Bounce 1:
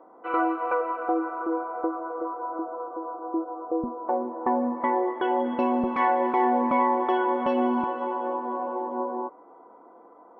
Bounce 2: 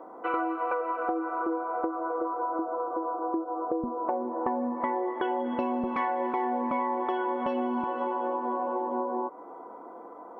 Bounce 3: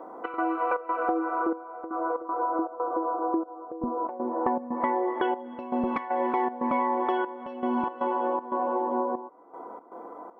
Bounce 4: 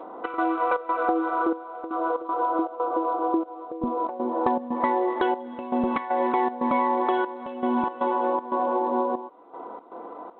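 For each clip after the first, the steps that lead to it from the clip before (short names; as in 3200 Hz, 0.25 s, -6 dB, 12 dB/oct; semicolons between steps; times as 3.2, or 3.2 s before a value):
compressor 5:1, threshold -34 dBFS, peak gain reduction 14 dB; gain +6.5 dB
step gate "xx.xxx.xxxxx..." 118 bpm -12 dB; gain +3 dB
gain +3 dB; G.726 32 kbps 8000 Hz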